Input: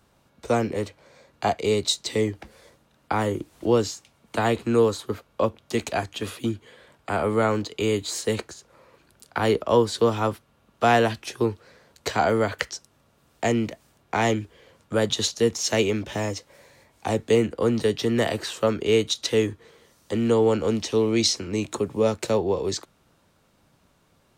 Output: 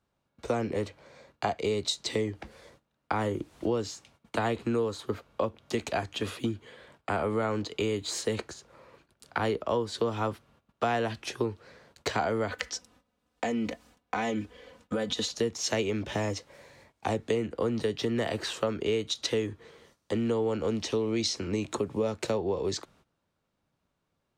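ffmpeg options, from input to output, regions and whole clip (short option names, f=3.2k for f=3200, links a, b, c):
-filter_complex "[0:a]asettb=1/sr,asplit=3[a][b][c];[a]atrim=end=12.504[d];[b]atrim=start=12.5:end=15.33,asetpts=PTS-STARTPTS,afade=t=in:d=0.004:c=qsin,afade=t=out:st=2.826:d=0.004:c=qsin,aecho=1:1:4:0.75,atrim=end_sample=124803,acompressor=threshold=-24dB:ratio=6:attack=3.2:release=140:knee=1:detection=peak[e];[c]atrim=start=15.326[f];[d][e]acrossfade=d=0.004:c1=hsin:c2=qsin[g];[g][f]acrossfade=d=0.004:c1=qsin:c2=hsin,agate=range=-16dB:threshold=-57dB:ratio=16:detection=peak,highshelf=f=9.1k:g=-11,acompressor=threshold=-26dB:ratio=4"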